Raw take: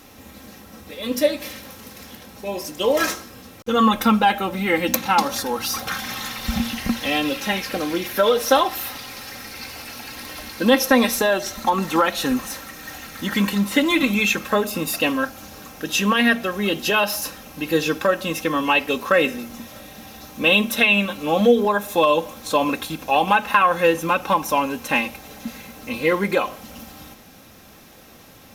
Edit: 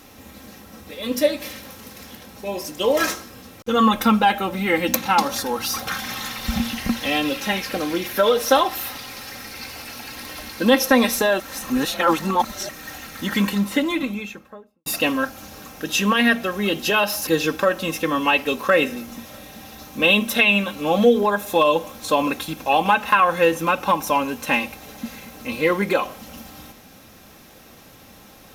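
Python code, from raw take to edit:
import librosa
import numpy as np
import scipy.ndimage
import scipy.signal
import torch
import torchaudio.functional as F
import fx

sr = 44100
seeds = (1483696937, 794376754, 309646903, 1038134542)

y = fx.studio_fade_out(x, sr, start_s=13.35, length_s=1.51)
y = fx.edit(y, sr, fx.reverse_span(start_s=11.4, length_s=1.29),
    fx.cut(start_s=17.27, length_s=0.42), tone=tone)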